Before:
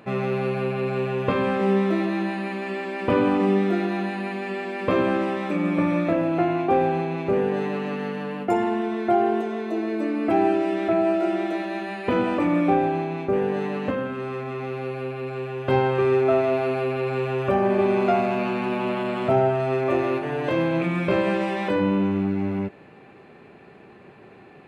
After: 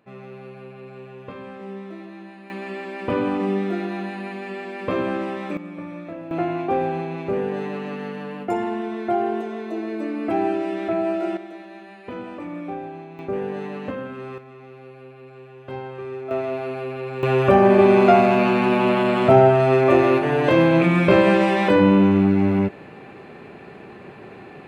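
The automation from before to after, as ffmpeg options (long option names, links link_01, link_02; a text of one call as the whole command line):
ffmpeg -i in.wav -af "asetnsamples=nb_out_samples=441:pad=0,asendcmd='2.5 volume volume -2.5dB;5.57 volume volume -12.5dB;6.31 volume volume -2dB;11.37 volume volume -11.5dB;13.19 volume volume -4dB;14.38 volume volume -12.5dB;16.31 volume volume -4.5dB;17.23 volume volume 7dB',volume=-14.5dB" out.wav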